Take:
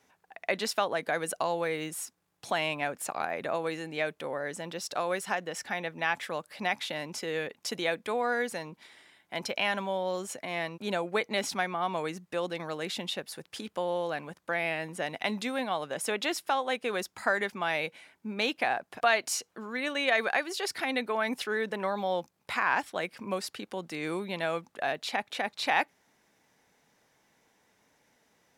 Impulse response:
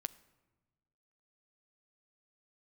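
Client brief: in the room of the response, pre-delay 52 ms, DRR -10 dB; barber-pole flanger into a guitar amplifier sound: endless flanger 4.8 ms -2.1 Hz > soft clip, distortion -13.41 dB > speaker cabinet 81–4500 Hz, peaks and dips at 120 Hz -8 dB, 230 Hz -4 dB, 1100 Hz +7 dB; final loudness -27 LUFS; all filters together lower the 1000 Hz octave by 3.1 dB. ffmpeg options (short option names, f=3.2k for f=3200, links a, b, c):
-filter_complex "[0:a]equalizer=f=1k:t=o:g=-7.5,asplit=2[a][b];[1:a]atrim=start_sample=2205,adelay=52[c];[b][c]afir=irnorm=-1:irlink=0,volume=12dB[d];[a][d]amix=inputs=2:normalize=0,asplit=2[e][f];[f]adelay=4.8,afreqshift=-2.1[g];[e][g]amix=inputs=2:normalize=1,asoftclip=threshold=-19dB,highpass=81,equalizer=f=120:t=q:w=4:g=-8,equalizer=f=230:t=q:w=4:g=-4,equalizer=f=1.1k:t=q:w=4:g=7,lowpass=f=4.5k:w=0.5412,lowpass=f=4.5k:w=1.3066,volume=1dB"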